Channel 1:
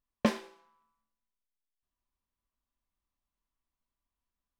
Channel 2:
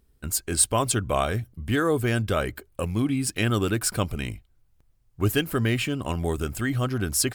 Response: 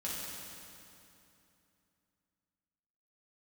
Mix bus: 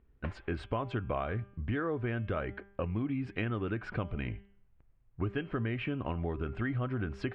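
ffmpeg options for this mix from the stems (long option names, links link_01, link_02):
-filter_complex "[0:a]highpass=700,acompressor=threshold=-39dB:ratio=4,volume=1.5dB[link_01];[1:a]volume=-2dB,asplit=2[link_02][link_03];[link_03]apad=whole_len=202623[link_04];[link_01][link_04]sidechaincompress=threshold=-37dB:ratio=8:attack=39:release=315[link_05];[link_05][link_02]amix=inputs=2:normalize=0,lowpass=frequency=2500:width=0.5412,lowpass=frequency=2500:width=1.3066,bandreject=frequency=198.9:width_type=h:width=4,bandreject=frequency=397.8:width_type=h:width=4,bandreject=frequency=596.7:width_type=h:width=4,bandreject=frequency=795.6:width_type=h:width=4,bandreject=frequency=994.5:width_type=h:width=4,bandreject=frequency=1193.4:width_type=h:width=4,bandreject=frequency=1392.3:width_type=h:width=4,bandreject=frequency=1591.2:width_type=h:width=4,bandreject=frequency=1790.1:width_type=h:width=4,bandreject=frequency=1989:width_type=h:width=4,bandreject=frequency=2187.9:width_type=h:width=4,bandreject=frequency=2386.8:width_type=h:width=4,bandreject=frequency=2585.7:width_type=h:width=4,bandreject=frequency=2784.6:width_type=h:width=4,bandreject=frequency=2983.5:width_type=h:width=4,bandreject=frequency=3182.4:width_type=h:width=4,bandreject=frequency=3381.3:width_type=h:width=4,acompressor=threshold=-30dB:ratio=6"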